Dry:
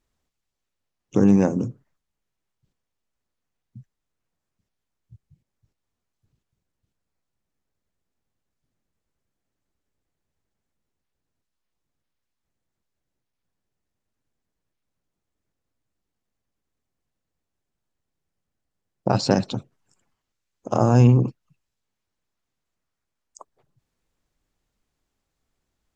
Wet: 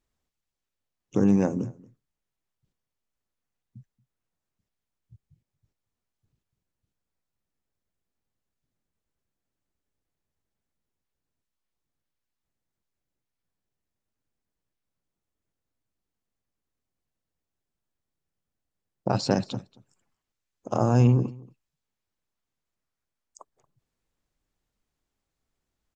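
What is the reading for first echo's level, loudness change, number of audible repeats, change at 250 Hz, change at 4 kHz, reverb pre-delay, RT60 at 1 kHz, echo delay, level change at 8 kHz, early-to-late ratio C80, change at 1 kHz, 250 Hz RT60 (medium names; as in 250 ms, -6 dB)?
-23.0 dB, -4.5 dB, 1, -4.5 dB, -4.5 dB, no reverb, no reverb, 230 ms, no reading, no reverb, -4.5 dB, no reverb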